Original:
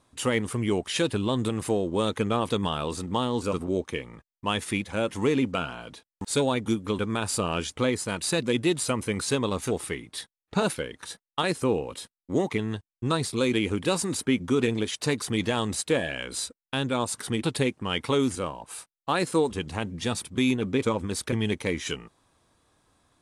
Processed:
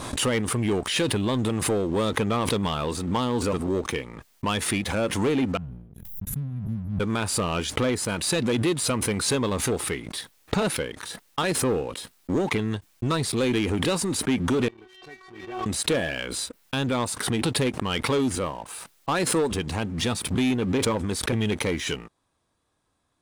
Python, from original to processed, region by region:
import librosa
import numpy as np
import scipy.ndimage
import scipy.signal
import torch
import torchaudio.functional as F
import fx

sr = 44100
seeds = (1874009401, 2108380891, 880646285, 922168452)

y = fx.chain(x, sr, fx.cheby2_bandstop(low_hz=350.0, high_hz=9100.0, order=4, stop_db=40),
    fx.sustainer(db_per_s=50.0), at=(5.57, 7.0))
y = fx.chain(y, sr, fx.lowpass(hz=1700.0, slope=12),
    fx.stiff_resonator(f0_hz=370.0, decay_s=0.3, stiffness=0.002), at=(14.68, 15.66))
y = fx.dynamic_eq(y, sr, hz=7000.0, q=1.1, threshold_db=-46.0, ratio=4.0, max_db=-4)
y = fx.leveller(y, sr, passes=2)
y = fx.pre_swell(y, sr, db_per_s=54.0)
y = y * 10.0 ** (-4.0 / 20.0)